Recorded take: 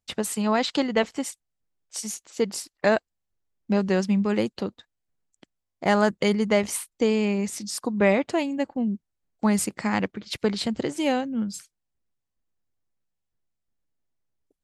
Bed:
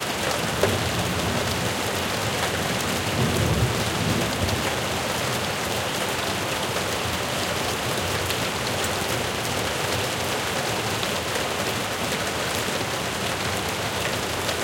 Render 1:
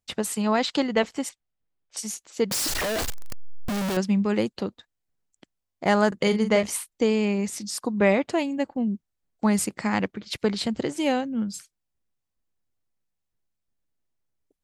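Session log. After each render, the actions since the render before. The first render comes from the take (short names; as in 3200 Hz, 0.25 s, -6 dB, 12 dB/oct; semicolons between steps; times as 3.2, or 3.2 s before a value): 1.29–1.97 LPF 3700 Hz; 2.51–3.97 infinite clipping; 6.08–6.63 doubler 41 ms -9 dB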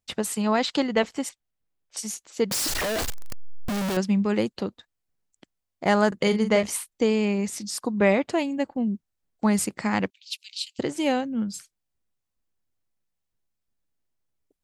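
10.1–10.79 Chebyshev high-pass 2600 Hz, order 5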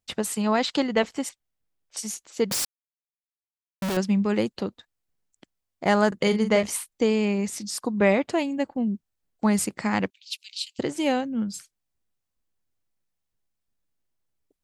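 2.65–3.82 mute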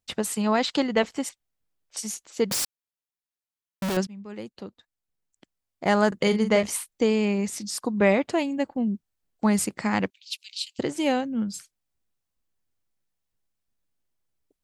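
4.07–6.09 fade in, from -23 dB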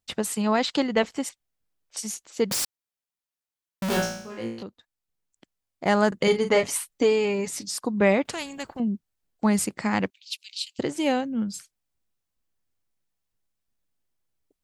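3.88–4.63 flutter echo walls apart 3 m, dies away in 0.62 s; 6.27–7.72 comb 7.1 ms, depth 66%; 8.25–8.8 spectral compressor 2:1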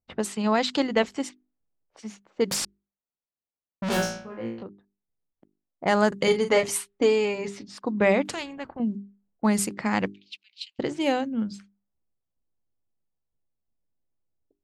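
notches 50/100/150/200/250/300/350/400 Hz; low-pass opened by the level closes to 700 Hz, open at -21.5 dBFS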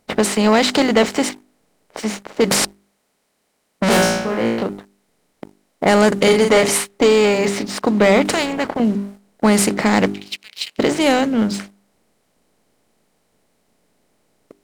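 per-bin compression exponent 0.6; sample leveller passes 2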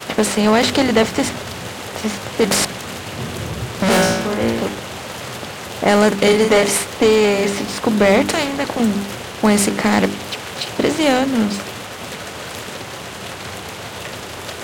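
add bed -4 dB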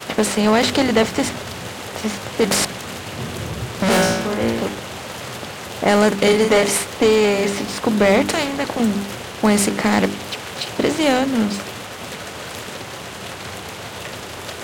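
gain -1.5 dB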